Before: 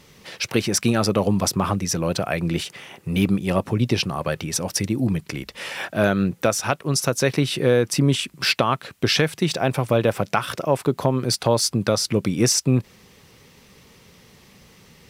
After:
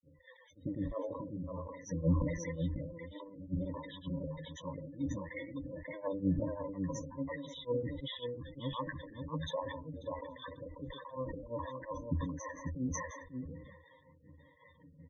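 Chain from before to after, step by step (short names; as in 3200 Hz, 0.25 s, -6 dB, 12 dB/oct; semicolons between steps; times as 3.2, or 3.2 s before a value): half-wave gain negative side -12 dB; auto swell 0.262 s; HPF 59 Hz 12 dB/oct; bell 6900 Hz -10.5 dB 2.6 oct; grains 0.196 s, grains 5.5/s, pitch spread up and down by 0 st; harmonic tremolo 1.4 Hz, depth 100%, crossover 480 Hz; flange 0.36 Hz, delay 9.4 ms, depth 1.9 ms, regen +21%; treble ducked by the level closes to 330 Hz, closed at -35.5 dBFS; ripple EQ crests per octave 1.1, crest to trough 18 dB; loudest bins only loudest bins 16; echo 0.541 s -6 dB; sustainer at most 49 dB/s; gain +3 dB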